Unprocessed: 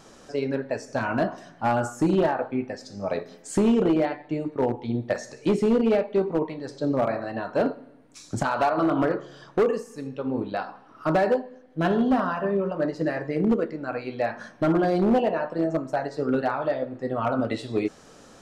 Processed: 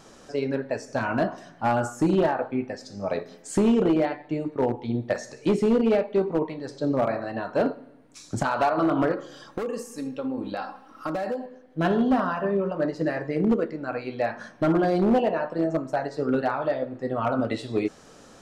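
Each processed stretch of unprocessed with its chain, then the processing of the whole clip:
0:09.13–0:11.46: high-shelf EQ 6,500 Hz +10 dB + comb filter 3.7 ms, depth 50% + downward compressor 10 to 1, threshold −25 dBFS
whole clip: no processing

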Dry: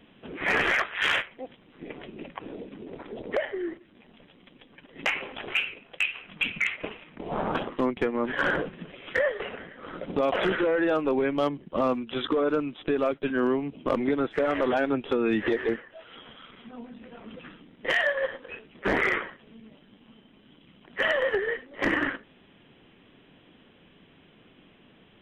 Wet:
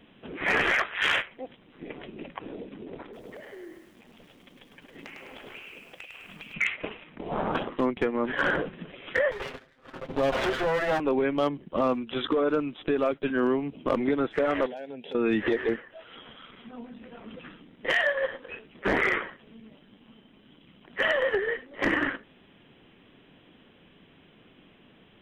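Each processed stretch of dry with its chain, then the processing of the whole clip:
0:03.03–0:06.54: downward compressor 12 to 1, threshold −41 dBFS + feedback echo at a low word length 103 ms, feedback 55%, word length 10 bits, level −5 dB
0:09.31–0:11.00: lower of the sound and its delayed copy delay 7.6 ms + noise gate −42 dBFS, range −14 dB
0:14.66–0:15.15: high-pass filter 160 Hz + phaser with its sweep stopped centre 320 Hz, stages 6 + downward compressor 4 to 1, threshold −37 dBFS
whole clip: no processing

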